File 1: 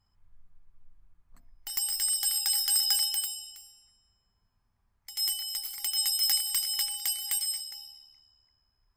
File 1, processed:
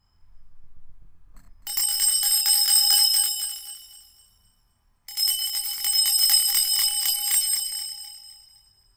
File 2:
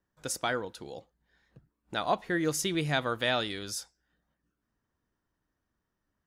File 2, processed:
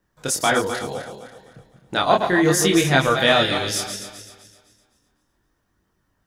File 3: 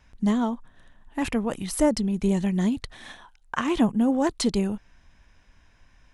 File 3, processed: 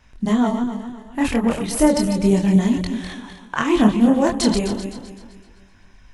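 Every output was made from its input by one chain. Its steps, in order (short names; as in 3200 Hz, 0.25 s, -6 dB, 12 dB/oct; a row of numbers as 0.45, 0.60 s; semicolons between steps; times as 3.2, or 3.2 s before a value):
regenerating reverse delay 0.128 s, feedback 60%, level -7.5 dB; chorus voices 2, 0.34 Hz, delay 25 ms, depth 4.3 ms; match loudness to -19 LUFS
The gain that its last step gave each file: +10.0, +14.5, +8.5 dB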